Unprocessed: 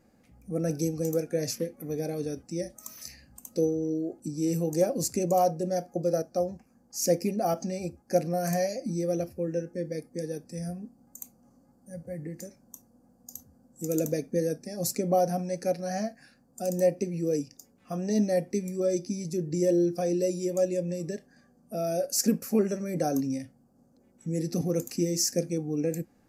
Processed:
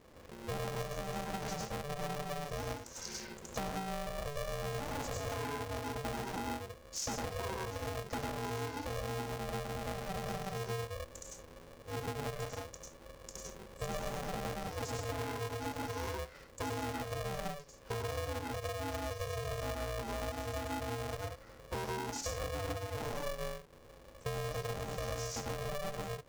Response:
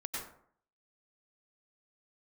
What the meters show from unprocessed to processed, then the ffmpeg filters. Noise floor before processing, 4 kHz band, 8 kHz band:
-63 dBFS, -3.0 dB, -10.0 dB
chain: -filter_complex "[0:a]aresample=16000,asoftclip=type=hard:threshold=-23dB,aresample=44100,bass=f=250:g=7,treble=f=4k:g=-1[a];[1:a]atrim=start_sample=2205,afade=t=out:st=0.24:d=0.01,atrim=end_sample=11025[b];[a][b]afir=irnorm=-1:irlink=0,acompressor=threshold=-38dB:ratio=16,aeval=exprs='val(0)*sgn(sin(2*PI*290*n/s))':c=same,volume=2.5dB"

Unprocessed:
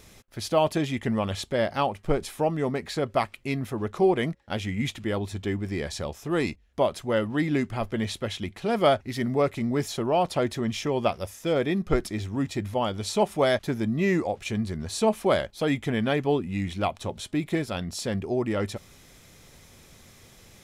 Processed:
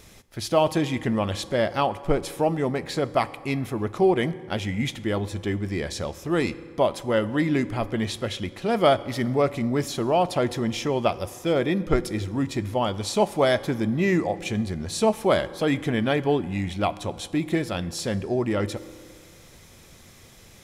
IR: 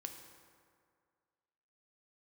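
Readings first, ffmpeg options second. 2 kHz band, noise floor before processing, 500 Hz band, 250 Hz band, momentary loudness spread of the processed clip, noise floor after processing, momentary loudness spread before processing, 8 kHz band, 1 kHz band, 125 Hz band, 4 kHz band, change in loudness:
+2.0 dB, -53 dBFS, +2.0 dB, +2.0 dB, 8 LU, -50 dBFS, 8 LU, +2.0 dB, +2.0 dB, +2.0 dB, +2.0 dB, +2.0 dB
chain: -filter_complex "[0:a]asplit=2[a][b];[1:a]atrim=start_sample=2205[c];[b][c]afir=irnorm=-1:irlink=0,volume=-3dB[d];[a][d]amix=inputs=2:normalize=0,volume=-1dB"

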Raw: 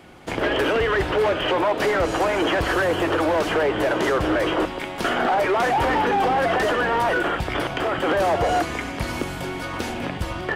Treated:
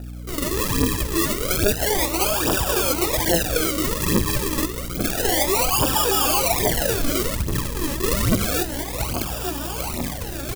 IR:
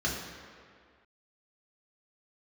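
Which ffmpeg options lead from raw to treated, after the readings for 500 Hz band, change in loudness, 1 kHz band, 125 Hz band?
-4.0 dB, +1.0 dB, -5.5 dB, +5.0 dB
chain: -filter_complex "[0:a]asplit=2[a][b];[b]adelay=891,lowpass=f=3.4k:p=1,volume=-12dB,asplit=2[c][d];[d]adelay=891,lowpass=f=3.4k:p=1,volume=0.55,asplit=2[e][f];[f]adelay=891,lowpass=f=3.4k:p=1,volume=0.55,asplit=2[g][h];[h]adelay=891,lowpass=f=3.4k:p=1,volume=0.55,asplit=2[i][j];[j]adelay=891,lowpass=f=3.4k:p=1,volume=0.55,asplit=2[k][l];[l]adelay=891,lowpass=f=3.4k:p=1,volume=0.55[m];[a][c][e][g][i][k][m]amix=inputs=7:normalize=0,acrusher=samples=41:mix=1:aa=0.000001:lfo=1:lforange=41:lforate=0.29,aphaser=in_gain=1:out_gain=1:delay=3.7:decay=0.65:speed=1.2:type=triangular,crystalizer=i=2.5:c=0,aeval=exprs='val(0)+0.0447*(sin(2*PI*60*n/s)+sin(2*PI*2*60*n/s)/2+sin(2*PI*3*60*n/s)/3+sin(2*PI*4*60*n/s)/4+sin(2*PI*5*60*n/s)/5)':c=same,volume=-5.5dB"

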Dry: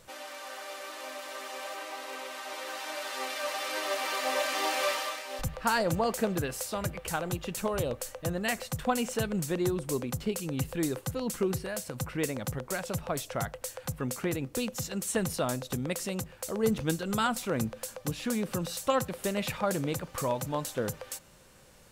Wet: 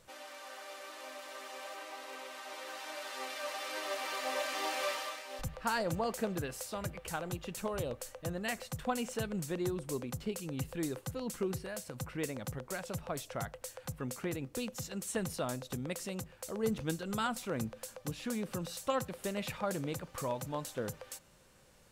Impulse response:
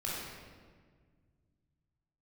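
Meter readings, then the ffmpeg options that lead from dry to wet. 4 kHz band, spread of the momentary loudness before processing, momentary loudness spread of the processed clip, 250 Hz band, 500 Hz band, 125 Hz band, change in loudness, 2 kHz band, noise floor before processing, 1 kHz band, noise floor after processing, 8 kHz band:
-6.0 dB, 10 LU, 10 LU, -6.0 dB, -6.0 dB, -6.0 dB, -6.0 dB, -6.0 dB, -54 dBFS, -6.0 dB, -60 dBFS, -6.5 dB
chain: -af "highshelf=f=12k:g=-3,volume=-6dB"

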